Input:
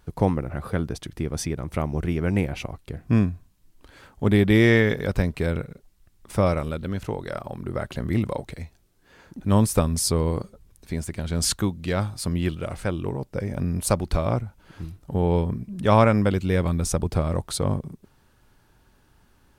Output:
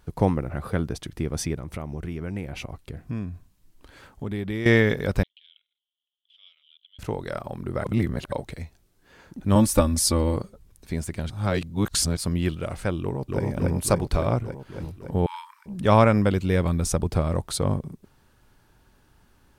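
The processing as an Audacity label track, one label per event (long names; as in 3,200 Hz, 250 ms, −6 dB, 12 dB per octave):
1.580000	4.660000	downward compressor 2.5 to 1, threshold −31 dBFS
5.230000	6.990000	flat-topped band-pass 3,200 Hz, Q 7.3
7.840000	8.320000	reverse
9.550000	10.360000	comb filter 3.5 ms, depth 80%
11.300000	12.170000	reverse
13.000000	13.420000	delay throw 280 ms, feedback 75%, level 0 dB
15.260000	15.660000	linear-phase brick-wall high-pass 860 Hz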